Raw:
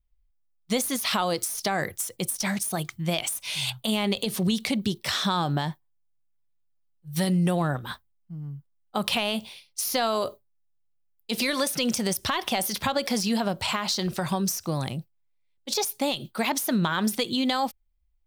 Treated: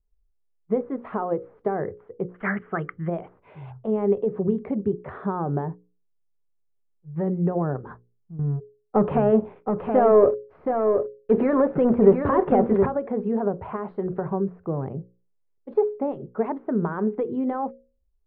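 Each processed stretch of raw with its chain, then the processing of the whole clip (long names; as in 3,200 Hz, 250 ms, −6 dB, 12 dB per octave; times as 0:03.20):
0:02.34–0:03.08: low-pass with resonance 3,000 Hz, resonance Q 7.8 + flat-topped bell 1,600 Hz +14.5 dB 1.1 octaves
0:08.39–0:12.86: high-shelf EQ 8,300 Hz −9.5 dB + leveller curve on the samples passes 3 + single-tap delay 722 ms −5.5 dB
whole clip: Bessel low-pass filter 920 Hz, order 6; parametric band 420 Hz +14.5 dB 0.33 octaves; mains-hum notches 60/120/180/240/300/360/420/480/540 Hz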